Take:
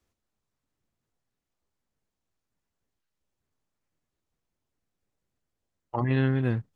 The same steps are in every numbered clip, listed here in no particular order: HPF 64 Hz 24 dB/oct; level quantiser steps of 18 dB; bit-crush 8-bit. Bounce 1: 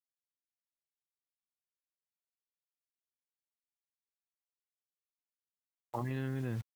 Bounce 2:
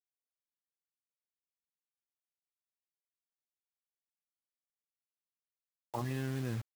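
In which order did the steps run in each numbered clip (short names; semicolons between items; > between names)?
HPF > bit-crush > level quantiser; level quantiser > HPF > bit-crush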